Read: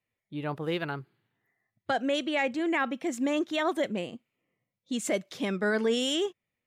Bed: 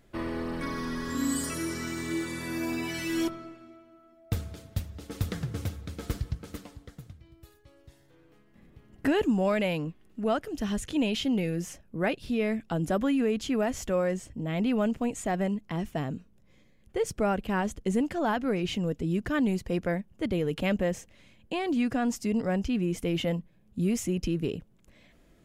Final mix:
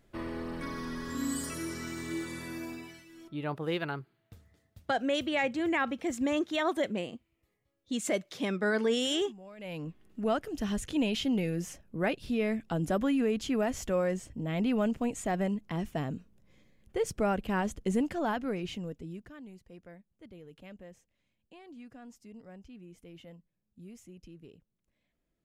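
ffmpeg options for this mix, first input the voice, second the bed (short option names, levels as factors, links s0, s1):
-filter_complex "[0:a]adelay=3000,volume=0.841[s0];[1:a]volume=7.08,afade=t=out:st=2.37:d=0.68:silence=0.112202,afade=t=in:st=9.57:d=0.44:silence=0.0841395,afade=t=out:st=18.03:d=1.32:silence=0.1[s1];[s0][s1]amix=inputs=2:normalize=0"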